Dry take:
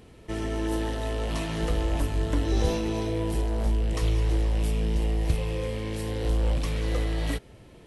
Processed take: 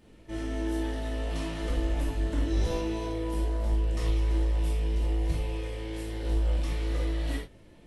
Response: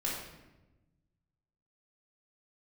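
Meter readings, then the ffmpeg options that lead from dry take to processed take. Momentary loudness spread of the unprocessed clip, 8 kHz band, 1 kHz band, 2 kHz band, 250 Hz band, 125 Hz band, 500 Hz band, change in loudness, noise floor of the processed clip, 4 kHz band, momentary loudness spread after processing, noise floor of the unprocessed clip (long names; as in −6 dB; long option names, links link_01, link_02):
6 LU, −5.5 dB, −4.5 dB, −4.0 dB, −3.0 dB, −3.0 dB, −4.5 dB, −2.5 dB, −53 dBFS, −4.5 dB, 7 LU, −51 dBFS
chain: -filter_complex "[1:a]atrim=start_sample=2205,atrim=end_sample=4410[link_01];[0:a][link_01]afir=irnorm=-1:irlink=0,volume=-8dB"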